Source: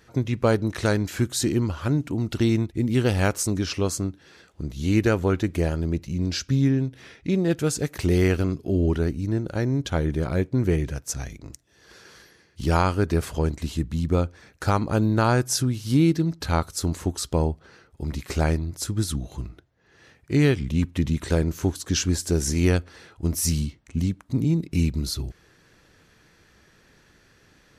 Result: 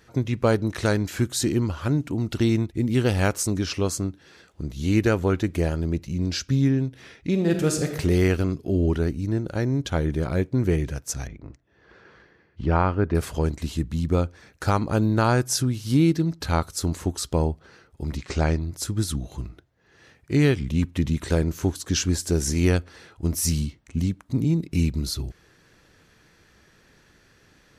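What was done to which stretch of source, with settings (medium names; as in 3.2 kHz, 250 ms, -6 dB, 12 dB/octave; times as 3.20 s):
7.31–7.98 s: reverb throw, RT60 1 s, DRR 4.5 dB
11.27–13.15 s: low-pass 2 kHz
18.17–18.61 s: low-pass 7.2 kHz 24 dB/octave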